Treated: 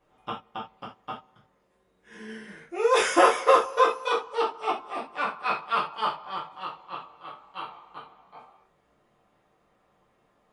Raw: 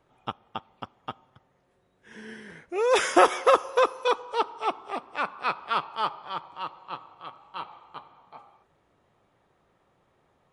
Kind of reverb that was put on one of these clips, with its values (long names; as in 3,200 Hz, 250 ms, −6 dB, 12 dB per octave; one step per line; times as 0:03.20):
reverb whose tail is shaped and stops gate 110 ms falling, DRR −6.5 dB
level −6.5 dB